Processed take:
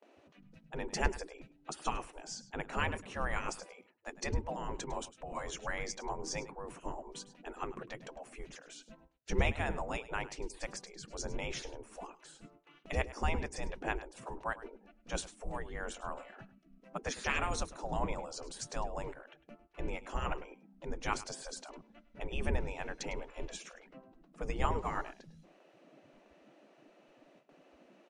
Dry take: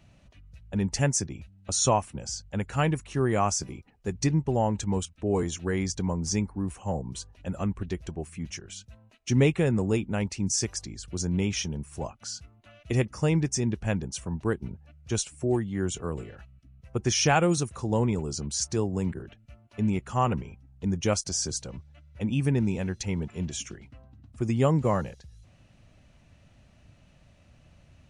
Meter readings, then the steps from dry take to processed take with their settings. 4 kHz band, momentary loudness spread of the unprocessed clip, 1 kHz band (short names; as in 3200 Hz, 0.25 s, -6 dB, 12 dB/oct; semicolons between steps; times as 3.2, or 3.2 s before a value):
-10.5 dB, 14 LU, -6.5 dB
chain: tilt -4 dB/oct; gate with hold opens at -37 dBFS; spectral gate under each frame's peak -25 dB weak; low shelf 130 Hz +10.5 dB; on a send: echo 0.103 s -16.5 dB; on the sum: gain +2 dB